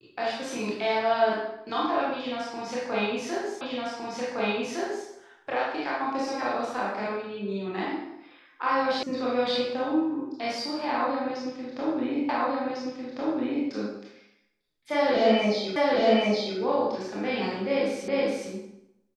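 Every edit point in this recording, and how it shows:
3.61 s: repeat of the last 1.46 s
9.03 s: sound stops dead
12.29 s: repeat of the last 1.4 s
15.76 s: repeat of the last 0.82 s
18.08 s: repeat of the last 0.42 s

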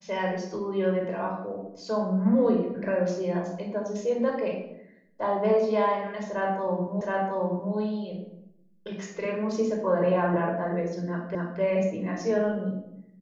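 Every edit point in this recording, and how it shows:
7.01 s: repeat of the last 0.72 s
11.35 s: repeat of the last 0.26 s

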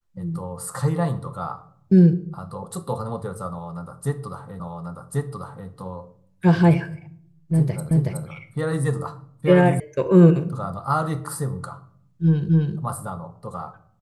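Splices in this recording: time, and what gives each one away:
4.60 s: repeat of the last 1.09 s
7.91 s: repeat of the last 0.37 s
9.80 s: sound stops dead
12.49 s: repeat of the last 0.26 s

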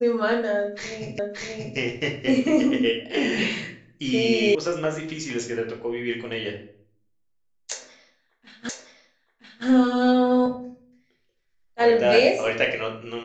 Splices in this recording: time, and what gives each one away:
1.19 s: repeat of the last 0.58 s
4.55 s: sound stops dead
8.69 s: repeat of the last 0.97 s

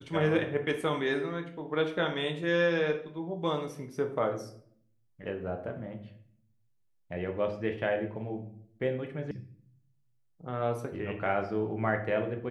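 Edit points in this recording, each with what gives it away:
9.31 s: sound stops dead

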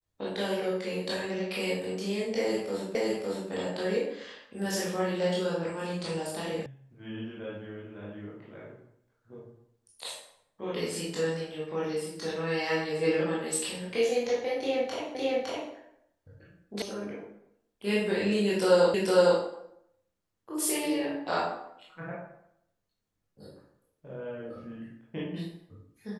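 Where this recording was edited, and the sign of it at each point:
2.95 s: repeat of the last 0.56 s
6.66 s: sound stops dead
15.15 s: repeat of the last 0.56 s
16.82 s: sound stops dead
18.94 s: repeat of the last 0.46 s

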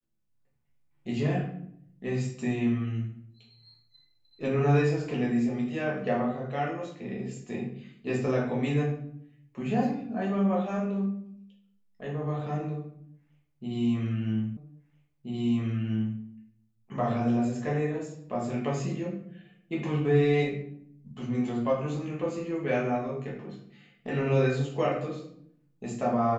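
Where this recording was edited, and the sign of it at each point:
14.57 s: repeat of the last 1.63 s

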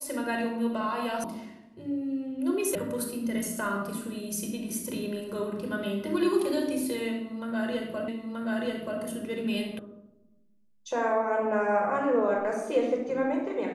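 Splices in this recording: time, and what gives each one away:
1.24 s: sound stops dead
2.75 s: sound stops dead
8.08 s: repeat of the last 0.93 s
9.79 s: sound stops dead

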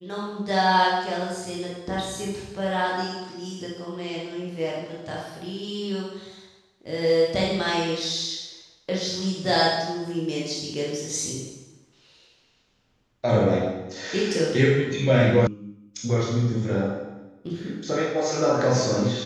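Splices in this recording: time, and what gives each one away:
15.47 s: sound stops dead

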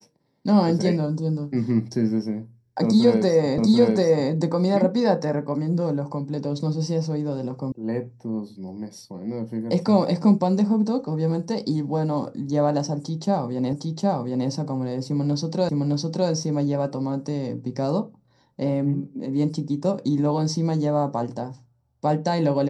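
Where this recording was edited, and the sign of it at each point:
3.58 s: repeat of the last 0.74 s
7.72 s: sound stops dead
13.73 s: repeat of the last 0.76 s
15.69 s: repeat of the last 0.61 s

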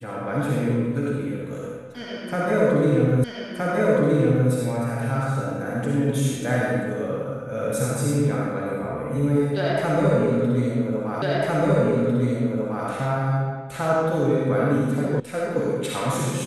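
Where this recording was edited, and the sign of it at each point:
3.24 s: repeat of the last 1.27 s
11.22 s: repeat of the last 1.65 s
15.20 s: sound stops dead

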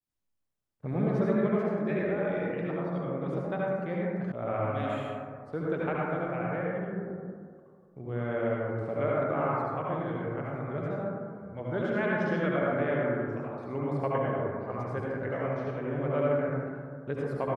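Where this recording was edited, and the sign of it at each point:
4.32 s: sound stops dead

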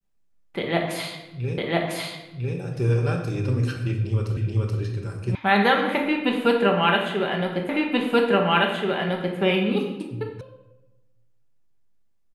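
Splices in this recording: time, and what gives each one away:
1.58 s: repeat of the last 1 s
4.37 s: repeat of the last 0.43 s
5.35 s: sound stops dead
7.69 s: repeat of the last 1.68 s
10.41 s: sound stops dead

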